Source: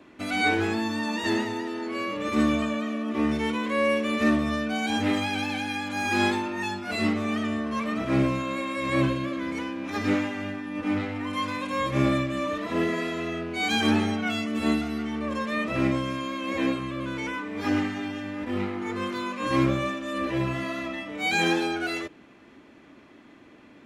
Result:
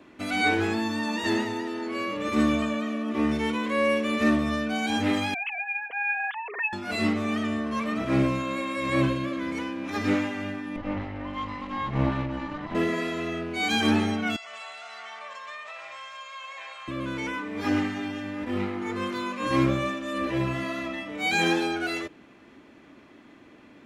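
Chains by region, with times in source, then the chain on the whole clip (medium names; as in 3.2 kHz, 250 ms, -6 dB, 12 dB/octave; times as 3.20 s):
5.34–6.73 s: formants replaced by sine waves + comb 4.2 ms, depth 35% + compression 1.5:1, threshold -31 dBFS
10.76–12.75 s: comb filter that takes the minimum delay 1 ms + tape spacing loss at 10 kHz 27 dB
14.36–16.88 s: elliptic band-pass 720–8100 Hz + compression 10:1, threshold -37 dBFS + two-band feedback delay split 2.5 kHz, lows 85 ms, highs 179 ms, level -9 dB
whole clip: none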